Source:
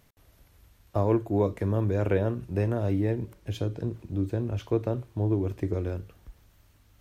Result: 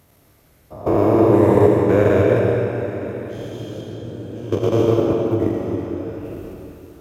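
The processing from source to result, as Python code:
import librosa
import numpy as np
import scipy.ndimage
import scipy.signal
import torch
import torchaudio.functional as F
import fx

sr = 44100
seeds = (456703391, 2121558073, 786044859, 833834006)

p1 = fx.spec_dilate(x, sr, span_ms=480)
p2 = fx.high_shelf(p1, sr, hz=4600.0, db=11.5)
p3 = 10.0 ** (-18.5 / 20.0) * np.tanh(p2 / 10.0 ** (-18.5 / 20.0))
p4 = p2 + (p3 * 10.0 ** (-5.0 / 20.0))
p5 = fx.high_shelf(p4, sr, hz=2100.0, db=-11.0)
p6 = fx.level_steps(p5, sr, step_db=18)
p7 = scipy.signal.sosfilt(scipy.signal.butter(2, 91.0, 'highpass', fs=sr, output='sos'), p6)
p8 = p7 + fx.echo_single(p7, sr, ms=904, db=-17.5, dry=0)
p9 = fx.rev_freeverb(p8, sr, rt60_s=2.8, hf_ratio=0.85, predelay_ms=40, drr_db=-2.0)
y = p9 * 10.0 ** (2.0 / 20.0)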